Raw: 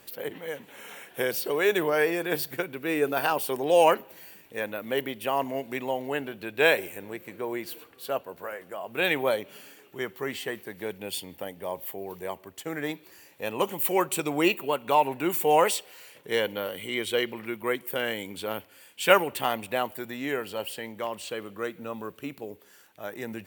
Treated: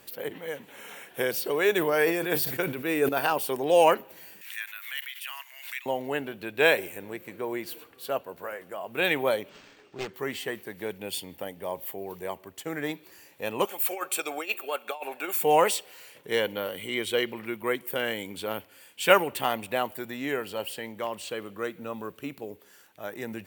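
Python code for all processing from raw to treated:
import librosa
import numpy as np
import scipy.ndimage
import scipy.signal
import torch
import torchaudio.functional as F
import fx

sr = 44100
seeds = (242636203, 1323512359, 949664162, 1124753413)

y = fx.chain(x, sr, fx.high_shelf(hz=7700.0, db=4.5),
    fx.sustainer(db_per_s=72.0), at=(1.77, 3.09))
y = fx.chain(y, sr, fx.cheby2_highpass(hz=260.0, order=4, stop_db=80),
    fx.pre_swell(db_per_s=73.0), at=(4.41, 5.86))
y = fx.chain(y, sr, fx.self_delay(depth_ms=0.59),
    fx.resample_linear(factor=4), at=(9.49, 10.14))
y = fx.chain(y, sr, fx.over_compress(threshold_db=-25.0, ratio=-0.5),
    fx.highpass(hz=630.0, slope=12),
    fx.notch_comb(f0_hz=970.0), at=(13.65, 15.43))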